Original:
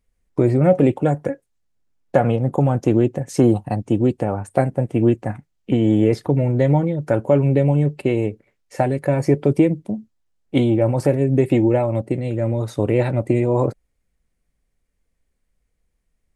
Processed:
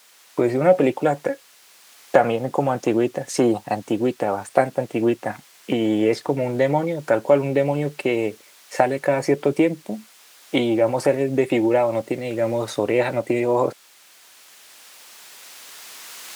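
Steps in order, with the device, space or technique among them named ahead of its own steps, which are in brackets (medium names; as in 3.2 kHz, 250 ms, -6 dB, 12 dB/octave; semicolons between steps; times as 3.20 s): cheap recorder with automatic gain (white noise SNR 35 dB; recorder AGC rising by 5.7 dB/s); frequency weighting A; trim +3.5 dB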